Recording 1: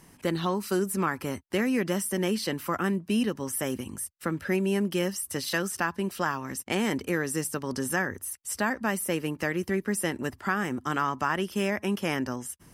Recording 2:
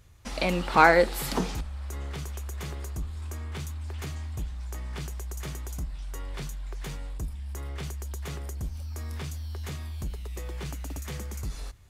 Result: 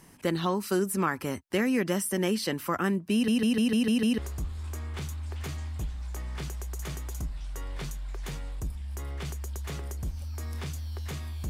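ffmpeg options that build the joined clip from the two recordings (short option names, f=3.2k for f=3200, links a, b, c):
-filter_complex "[0:a]apad=whole_dur=11.49,atrim=end=11.49,asplit=7[a][b][c][d][e][f][g];[a]atrim=end=3.282[h];[b]atrim=start=3.128:end=3.282[i];[c]atrim=start=3.128:end=3.282[j];[d]atrim=start=3.128:end=3.282[k];[e]atrim=start=3.128:end=3.282[l];[f]atrim=start=3.128:end=3.282[m];[g]atrim=start=3.128:end=3.282[n];[1:a]atrim=start=2.758:end=10.07[o];[h][i]acrossfade=d=0.004:c1=hsin:c2=hsin[p];[p][j]acrossfade=d=0.004:c1=hsin:c2=hsin[q];[q][k]acrossfade=d=0.004:c1=hsin:c2=hsin[r];[r][l]acrossfade=d=0.004:c1=hsin:c2=hsin[s];[s][m]acrossfade=d=0.004:c1=hsin:c2=hsin[t];[t][n]acrossfade=d=0.004:c1=hsin:c2=hsin[u];[u][o]acrossfade=d=0.004:c1=hsin:c2=hsin"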